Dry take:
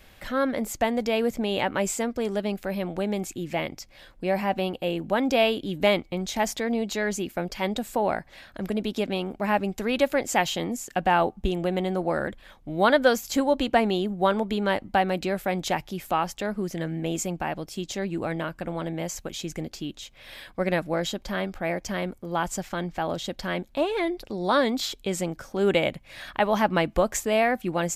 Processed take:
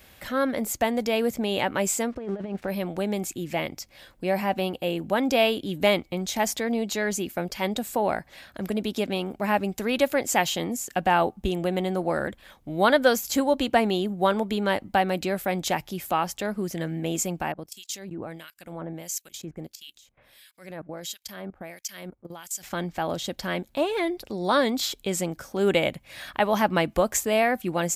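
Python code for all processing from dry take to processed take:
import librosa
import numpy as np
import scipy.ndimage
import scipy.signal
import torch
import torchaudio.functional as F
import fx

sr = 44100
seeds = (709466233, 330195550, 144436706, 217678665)

y = fx.chain(x, sr, fx.crossing_spikes(level_db=-30.5),
    fx.lowpass(hz=1700.0, slope=12),
    fx.over_compress(threshold_db=-30.0, ratio=-0.5), at=(2.12, 2.68))
y = fx.chain(y, sr, fx.high_shelf(hz=4700.0, db=9.0),
    fx.level_steps(step_db=17),
    fx.harmonic_tremolo(hz=1.5, depth_pct=100, crossover_hz=1700.0), at=(17.52, 22.63))
y = scipy.signal.sosfilt(scipy.signal.butter(2, 46.0, 'highpass', fs=sr, output='sos'), y)
y = fx.high_shelf(y, sr, hz=8000.0, db=8.5)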